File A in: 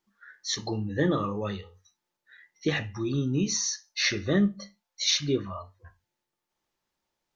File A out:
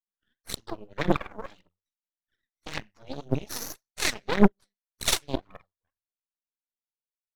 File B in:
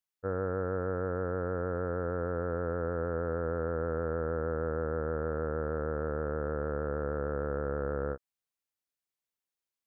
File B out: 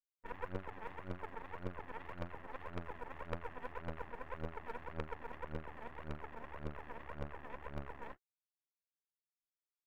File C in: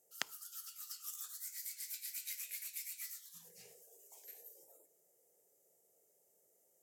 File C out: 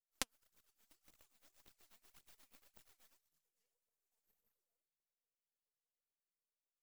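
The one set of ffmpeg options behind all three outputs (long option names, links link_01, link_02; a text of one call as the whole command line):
ffmpeg -i in.wav -af "aphaser=in_gain=1:out_gain=1:delay=4.7:decay=0.75:speed=1.8:type=triangular,aeval=exprs='0.596*(cos(1*acos(clip(val(0)/0.596,-1,1)))-cos(1*PI/2))+0.0266*(cos(5*acos(clip(val(0)/0.596,-1,1)))-cos(5*PI/2))+0.0596*(cos(6*acos(clip(val(0)/0.596,-1,1)))-cos(6*PI/2))+0.106*(cos(7*acos(clip(val(0)/0.596,-1,1)))-cos(7*PI/2))':channel_layout=same,aeval=exprs='max(val(0),0)':channel_layout=same" out.wav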